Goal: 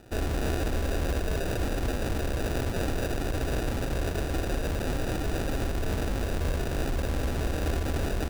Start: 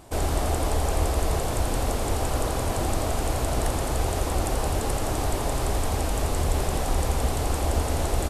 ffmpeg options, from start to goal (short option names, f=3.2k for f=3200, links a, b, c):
-af "alimiter=limit=-18dB:level=0:latency=1:release=27,acrusher=samples=41:mix=1:aa=0.000001,aeval=exprs='sgn(val(0))*max(abs(val(0))-0.00106,0)':c=same,volume=-1.5dB"